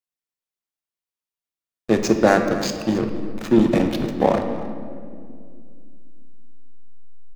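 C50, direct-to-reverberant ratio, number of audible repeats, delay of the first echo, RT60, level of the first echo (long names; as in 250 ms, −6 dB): 6.5 dB, 4.5 dB, 1, 275 ms, 2.2 s, −17.5 dB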